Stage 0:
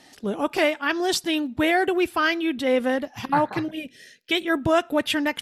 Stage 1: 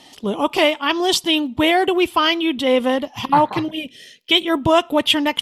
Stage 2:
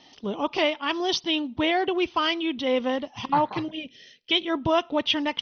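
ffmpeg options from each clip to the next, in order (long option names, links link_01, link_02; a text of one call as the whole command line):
ffmpeg -i in.wav -af "equalizer=frequency=1000:width_type=o:width=0.33:gain=7,equalizer=frequency=1600:width_type=o:width=0.33:gain=-9,equalizer=frequency=3150:width_type=o:width=0.33:gain=9,volume=4.5dB" out.wav
ffmpeg -i in.wav -af "volume=-7.5dB" -ar 44100 -c:a ac3 -b:a 48k out.ac3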